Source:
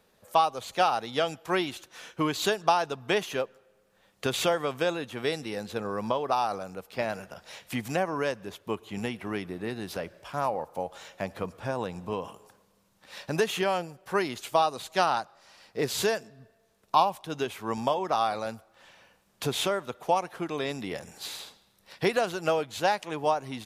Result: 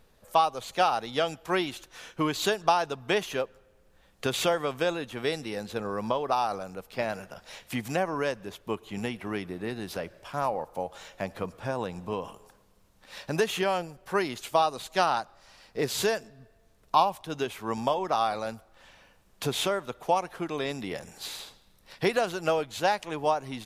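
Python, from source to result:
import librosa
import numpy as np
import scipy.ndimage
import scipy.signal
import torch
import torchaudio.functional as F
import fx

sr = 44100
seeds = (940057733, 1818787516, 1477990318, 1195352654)

y = fx.dmg_noise_colour(x, sr, seeds[0], colour='brown', level_db=-63.0)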